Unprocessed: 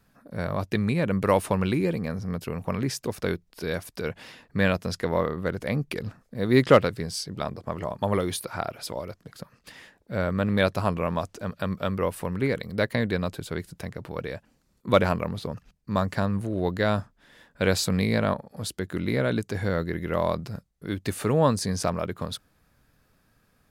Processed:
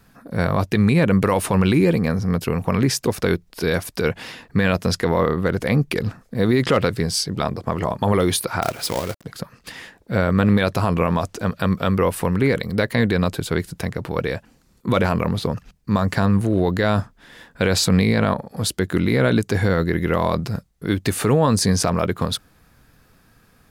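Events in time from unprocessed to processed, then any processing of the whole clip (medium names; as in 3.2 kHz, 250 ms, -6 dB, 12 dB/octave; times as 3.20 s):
8.62–9.24 s: companded quantiser 4-bit
17.69–18.25 s: treble shelf 9.2 kHz -6 dB
whole clip: band-stop 590 Hz, Q 12; loudness maximiser +17 dB; trim -7 dB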